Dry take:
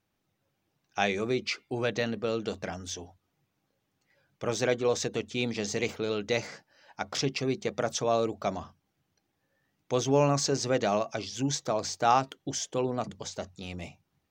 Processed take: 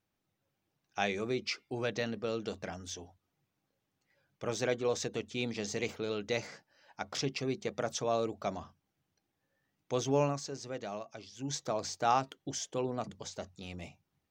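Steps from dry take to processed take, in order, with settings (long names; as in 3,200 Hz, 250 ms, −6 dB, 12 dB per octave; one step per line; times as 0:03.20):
0:01.41–0:02.49: parametric band 5,300 Hz +6 dB 0.21 octaves
0:10.22–0:11.57: duck −8.5 dB, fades 0.18 s
level −5 dB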